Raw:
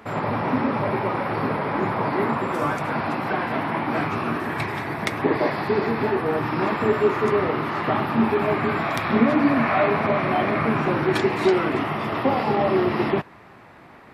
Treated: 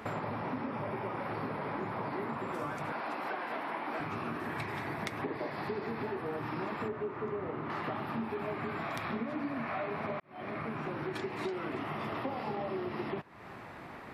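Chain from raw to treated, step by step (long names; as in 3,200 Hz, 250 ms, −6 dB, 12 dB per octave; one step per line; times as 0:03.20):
0:00.66–0:01.20: notch filter 4,100 Hz, Q 8
0:02.92–0:04.00: high-pass filter 350 Hz 12 dB per octave
0:06.88–0:07.70: head-to-tape spacing loss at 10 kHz 28 dB
0:10.20–0:11.80: fade in
downward compressor 6 to 1, threshold −35 dBFS, peak gain reduction 21 dB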